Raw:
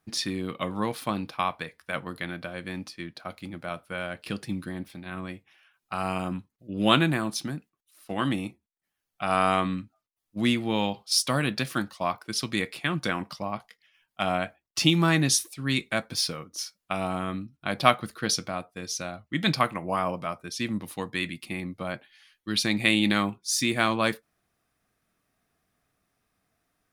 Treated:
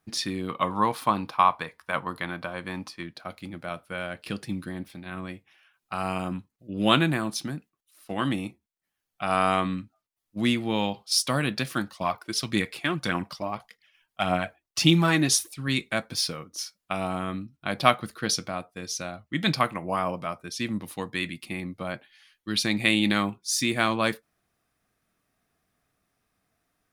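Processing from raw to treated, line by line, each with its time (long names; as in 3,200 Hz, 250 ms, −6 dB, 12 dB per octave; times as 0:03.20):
0:00.49–0:03.03: parametric band 1,000 Hz +10.5 dB 0.76 octaves
0:11.98–0:15.68: phase shifter 1.7 Hz, delay 3.4 ms, feedback 41%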